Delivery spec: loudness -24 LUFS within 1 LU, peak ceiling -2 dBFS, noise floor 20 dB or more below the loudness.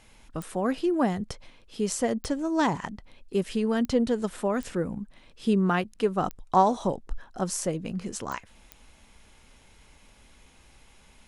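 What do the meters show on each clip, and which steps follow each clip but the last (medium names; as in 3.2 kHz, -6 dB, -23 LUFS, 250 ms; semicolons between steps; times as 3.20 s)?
clicks found 7; loudness -28.0 LUFS; peak level -8.5 dBFS; loudness target -24.0 LUFS
-> de-click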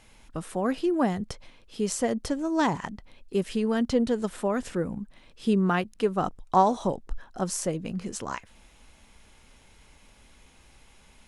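clicks found 0; loudness -28.0 LUFS; peak level -8.5 dBFS; loudness target -24.0 LUFS
-> trim +4 dB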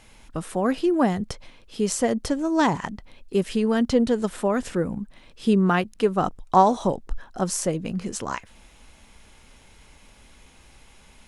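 loudness -24.0 LUFS; peak level -4.5 dBFS; noise floor -52 dBFS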